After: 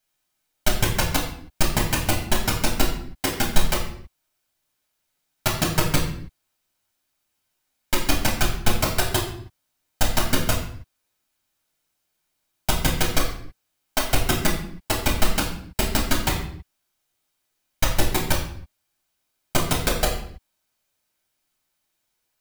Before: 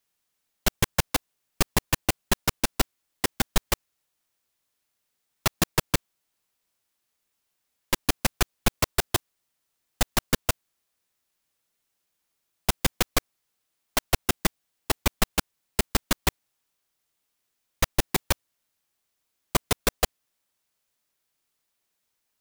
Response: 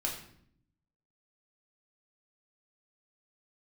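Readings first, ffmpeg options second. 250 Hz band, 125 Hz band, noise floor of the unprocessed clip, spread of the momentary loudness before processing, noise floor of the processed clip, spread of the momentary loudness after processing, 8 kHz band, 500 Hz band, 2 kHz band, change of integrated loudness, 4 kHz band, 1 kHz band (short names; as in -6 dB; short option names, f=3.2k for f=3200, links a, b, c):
+4.5 dB, +5.5 dB, -79 dBFS, 5 LU, -76 dBFS, 11 LU, +2.5 dB, +3.5 dB, +3.5 dB, +3.0 dB, +3.5 dB, +3.5 dB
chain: -filter_complex "[1:a]atrim=start_sample=2205,afade=t=out:st=0.38:d=0.01,atrim=end_sample=17199[a];[0:a][a]afir=irnorm=-1:irlink=0"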